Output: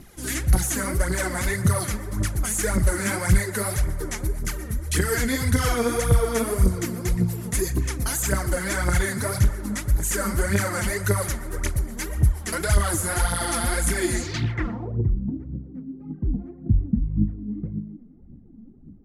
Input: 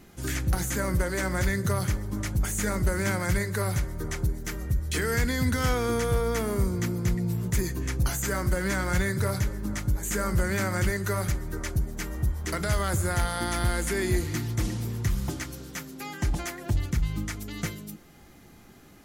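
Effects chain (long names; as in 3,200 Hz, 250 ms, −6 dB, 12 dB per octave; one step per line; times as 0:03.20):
phase shifter 1.8 Hz, delay 4.8 ms, feedback 69%
delay with a band-pass on its return 119 ms, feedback 72%, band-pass 1,100 Hz, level −15.5 dB
low-pass filter sweep 11,000 Hz → 230 Hz, 0:14.09–0:15.18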